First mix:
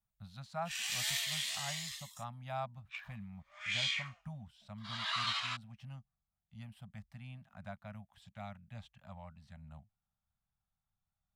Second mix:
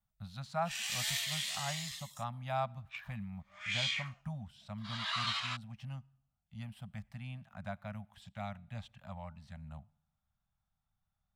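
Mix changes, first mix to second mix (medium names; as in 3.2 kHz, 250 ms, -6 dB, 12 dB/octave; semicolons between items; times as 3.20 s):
speech +4.0 dB; reverb: on, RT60 0.70 s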